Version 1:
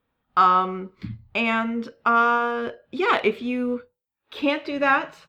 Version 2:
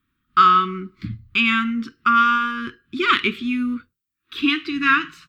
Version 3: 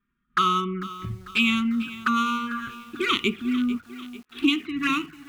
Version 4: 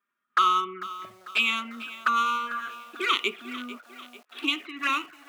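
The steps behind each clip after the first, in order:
Chebyshev band-stop 340–1200 Hz, order 3; dynamic bell 3.2 kHz, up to +6 dB, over -41 dBFS, Q 2.1; trim +4.5 dB
local Wiener filter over 9 samples; touch-sensitive flanger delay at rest 5 ms, full sweep at -17 dBFS; bit-crushed delay 446 ms, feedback 55%, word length 7-bit, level -15 dB
resonant high-pass 610 Hz, resonance Q 4.9; trim -1.5 dB

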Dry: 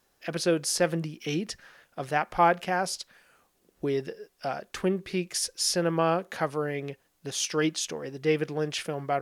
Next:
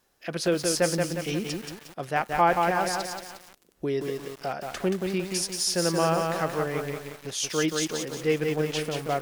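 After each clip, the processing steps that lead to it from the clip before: bit-crushed delay 178 ms, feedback 55%, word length 7-bit, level -3.5 dB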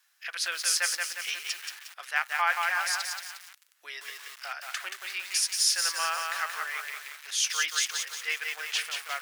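ladder high-pass 1.2 kHz, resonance 25%; trim +8.5 dB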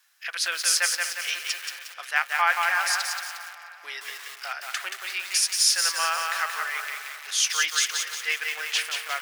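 feedback echo behind a low-pass 243 ms, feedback 66%, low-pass 3.2 kHz, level -14.5 dB; trim +4 dB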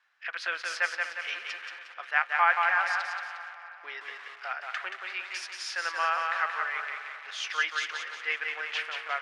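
low-pass 2.1 kHz 12 dB/octave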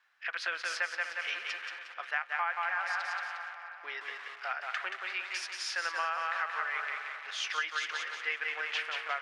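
compression 6:1, threshold -29 dBFS, peak gain reduction 11.5 dB

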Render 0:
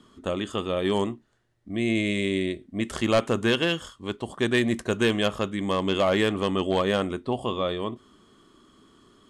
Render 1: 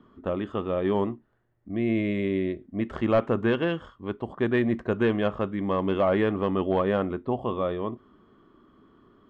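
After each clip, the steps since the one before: low-pass 1.6 kHz 12 dB/octave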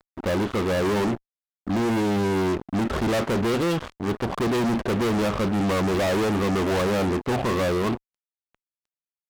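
dynamic bell 1.8 kHz, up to -6 dB, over -46 dBFS, Q 1.4; fuzz box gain 40 dB, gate -46 dBFS; trim -8 dB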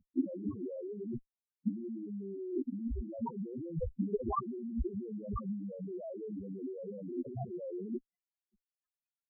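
compressor with a negative ratio -31 dBFS, ratio -0.5; loudest bins only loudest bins 2; trim +2.5 dB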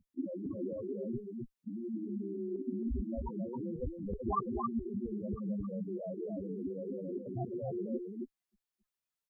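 slow attack 107 ms; delay 269 ms -4 dB; trim +1 dB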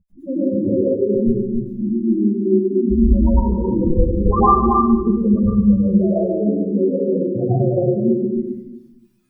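spectral contrast enhancement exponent 2.5; reverberation RT60 0.85 s, pre-delay 99 ms, DRR -11 dB; trim +7.5 dB

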